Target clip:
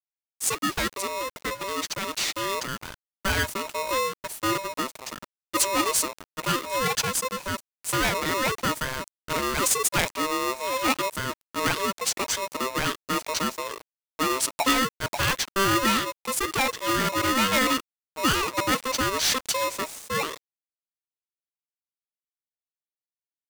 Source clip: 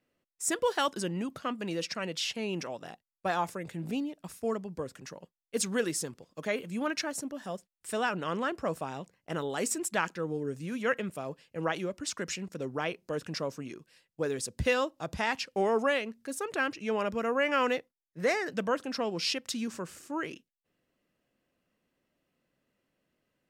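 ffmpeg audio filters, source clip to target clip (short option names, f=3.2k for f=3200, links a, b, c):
-filter_complex "[0:a]dynaudnorm=f=300:g=17:m=5.5dB,asplit=2[a][b];[b]aeval=exprs='0.0596*(abs(mod(val(0)/0.0596+3,4)-2)-1)':c=same,volume=-6.5dB[c];[a][c]amix=inputs=2:normalize=0,highshelf=f=8.2k:g=8,aeval=exprs='val(0)*gte(abs(val(0)),0.0119)':c=same,aeval=exprs='val(0)*sgn(sin(2*PI*780*n/s))':c=same,volume=-1dB"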